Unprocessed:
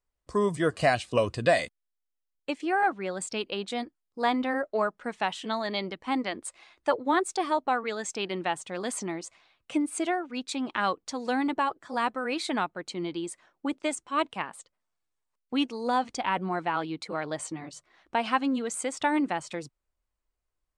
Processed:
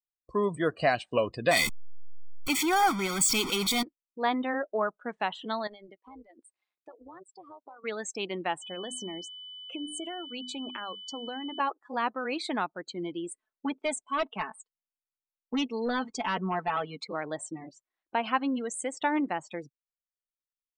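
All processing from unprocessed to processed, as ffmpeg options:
ffmpeg -i in.wav -filter_complex "[0:a]asettb=1/sr,asplit=3[link_01][link_02][link_03];[link_01]atrim=end=1.514[link_04];[link_02]atrim=start=1.51:end=3.83,asetpts=PTS-STARTPTS,afade=type=in:duration=0.004:curve=qsin,afade=type=out:start_time=2.316:duration=0.004:curve=qsin,aeval=exprs='val(0)+0.5*0.0398*sgn(val(0))':channel_layout=same,highshelf=frequency=3100:gain=7.5,aecho=1:1:0.9:0.78,atrim=end_sample=102312[link_05];[link_03]atrim=start=3.826[link_06];[link_04][link_05]acrossfade=duration=0.004:curve1=hsin:curve2=qsin[link_07];[link_07][link_06]acrossfade=duration=0.004:curve1=qsin:curve2=hsin,asettb=1/sr,asplit=3[link_08][link_09][link_10];[link_08]atrim=end=5.674[link_11];[link_09]atrim=start=5.67:end=7.84,asetpts=PTS-STARTPTS,afade=type=in:duration=0.004:curve=qsin,afade=type=out:start_time=2.166:duration=0.004:curve=qsin,highpass=210,acompressor=threshold=-40dB:ratio=5:attack=3.2:release=140:knee=1:detection=peak,tremolo=f=200:d=0.788[link_12];[link_10]atrim=start=7.836[link_13];[link_11][link_12]acrossfade=duration=0.004:curve1=hsin:curve2=qsin[link_14];[link_14][link_13]acrossfade=duration=0.004:curve1=qsin:curve2=hsin,asettb=1/sr,asplit=3[link_15][link_16][link_17];[link_15]atrim=end=8.624[link_18];[link_16]atrim=start=8.62:end=11.6,asetpts=PTS-STARTPTS,afade=type=in:duration=0.004:curve=qsin,afade=type=out:start_time=2.976:duration=0.004:curve=qsin,bandreject=frequency=50:width_type=h:width=6,bandreject=frequency=100:width_type=h:width=6,bandreject=frequency=150:width_type=h:width=6,bandreject=frequency=200:width_type=h:width=6,bandreject=frequency=250:width_type=h:width=6,bandreject=frequency=300:width_type=h:width=6,acompressor=threshold=-31dB:ratio=12:attack=3.2:release=140:knee=1:detection=peak,aeval=exprs='val(0)+0.01*sin(2*PI*3000*n/s)':channel_layout=same[link_19];[link_17]atrim=start=11.596[link_20];[link_18][link_19]acrossfade=duration=0.004:curve1=hsin:curve2=qsin[link_21];[link_21][link_20]acrossfade=duration=0.004:curve1=qsin:curve2=hsin,asettb=1/sr,asplit=3[link_22][link_23][link_24];[link_22]atrim=end=13.314[link_25];[link_23]atrim=start=13.31:end=17.05,asetpts=PTS-STARTPTS,afade=type=in:duration=0.004:curve=qsin,afade=type=out:start_time=3.736:duration=0.004:curve=qsin,aecho=1:1:4.6:0.85,atrim=end_sample=164934,asoftclip=type=hard:threshold=-22.5dB[link_26];[link_24]atrim=start=17.046[link_27];[link_25][link_26]acrossfade=duration=0.004:curve1=hsin:curve2=qsin[link_28];[link_28][link_27]acrossfade=duration=0.004:curve1=qsin:curve2=hsin,afftdn=noise_reduction=28:noise_floor=-40,equalizer=frequency=86:width_type=o:width=1.1:gain=-9,volume=-1.5dB" out.wav

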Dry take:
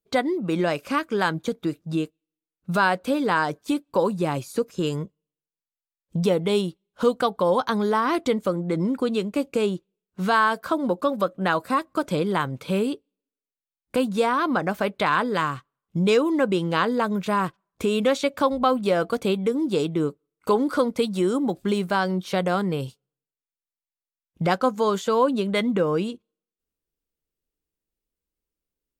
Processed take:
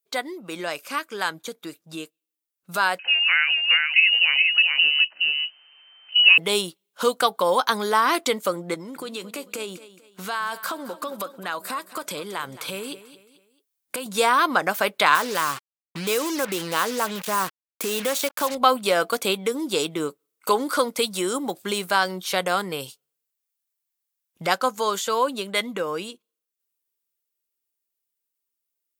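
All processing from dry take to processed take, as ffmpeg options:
ffmpeg -i in.wav -filter_complex "[0:a]asettb=1/sr,asplit=3[link_01][link_02][link_03];[link_01]atrim=end=2.994[link_04];[link_02]atrim=start=2.99:end=6.38,asetpts=PTS-STARTPTS,afade=type=in:duration=0.004:curve=qsin,afade=type=out:start_time=3.386:duration=0.004:curve=qsin,acompressor=mode=upward:threshold=-30dB:ratio=2.5:attack=3.2:release=140:knee=2.83:detection=peak,aecho=1:1:421:0.631,atrim=end_sample=149499,lowpass=frequency=2600:width_type=q:width=0.5098,lowpass=frequency=2600:width_type=q:width=0.6013,lowpass=frequency=2600:width_type=q:width=0.9,lowpass=frequency=2600:width_type=q:width=2.563,afreqshift=-3100[link_05];[link_03]atrim=start=6.376[link_06];[link_04][link_05]acrossfade=duration=0.004:curve1=hsin:curve2=qsin[link_07];[link_07][link_06]acrossfade=duration=0.004:curve1=qsin:curve2=hsin,asettb=1/sr,asplit=3[link_08][link_09][link_10];[link_08]atrim=end=8.744[link_11];[link_09]atrim=start=8.74:end=14.06,asetpts=PTS-STARTPTS,afade=type=in:duration=0.004:curve=qsin,afade=type=out:start_time=5.316:duration=0.004:curve=qsin,acompressor=threshold=-28dB:ratio=6:attack=3.2:release=140:knee=1:detection=peak,aecho=1:1:220|440|660:0.178|0.0676|0.0257,atrim=end_sample=234612[link_12];[link_10]atrim=start=14.056[link_13];[link_11][link_12]acrossfade=duration=0.004:curve1=hsin:curve2=qsin[link_14];[link_14][link_13]acrossfade=duration=0.004:curve1=qsin:curve2=hsin,asettb=1/sr,asplit=3[link_15][link_16][link_17];[link_15]atrim=end=15.154[link_18];[link_16]atrim=start=15.15:end=18.55,asetpts=PTS-STARTPTS,afade=type=in:duration=0.004:curve=qsin,afade=type=out:start_time=3.396:duration=0.004:curve=qsin,equalizer=frequency=4000:width=0.36:gain=-5,acompressor=threshold=-23dB:ratio=2:attack=3.2:release=140:knee=1:detection=peak,acrusher=bits=5:mix=0:aa=0.5[link_19];[link_17]atrim=start=18.546[link_20];[link_18][link_19]acrossfade=duration=0.004:curve1=hsin:curve2=qsin[link_21];[link_21][link_20]acrossfade=duration=0.004:curve1=qsin:curve2=hsin,highpass=frequency=1100:poles=1,highshelf=frequency=7700:gain=11,dynaudnorm=framelen=390:gausssize=21:maxgain=10dB" out.wav

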